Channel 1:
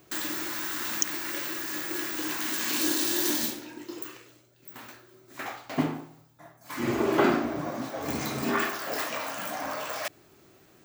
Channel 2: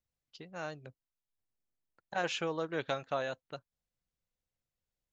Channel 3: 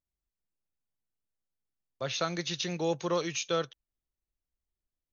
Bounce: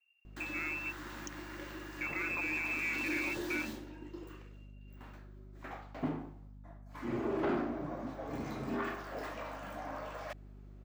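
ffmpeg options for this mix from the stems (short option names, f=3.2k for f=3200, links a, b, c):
-filter_complex "[0:a]aeval=exprs='val(0)+0.00631*(sin(2*PI*50*n/s)+sin(2*PI*2*50*n/s)/2+sin(2*PI*3*50*n/s)/3+sin(2*PI*4*50*n/s)/4+sin(2*PI*5*50*n/s)/5)':c=same,lowpass=f=1.2k:p=1,adelay=250,volume=-6.5dB[a];[1:a]aemphasis=mode=reproduction:type=riaa,volume=1.5dB[b];[2:a]volume=1dB[c];[b][c]amix=inputs=2:normalize=0,lowpass=f=2.4k:t=q:w=0.5098,lowpass=f=2.4k:t=q:w=0.6013,lowpass=f=2.4k:t=q:w=0.9,lowpass=f=2.4k:t=q:w=2.563,afreqshift=-2800,alimiter=level_in=4dB:limit=-24dB:level=0:latency=1,volume=-4dB,volume=0dB[d];[a][d]amix=inputs=2:normalize=0,asoftclip=type=tanh:threshold=-26dB"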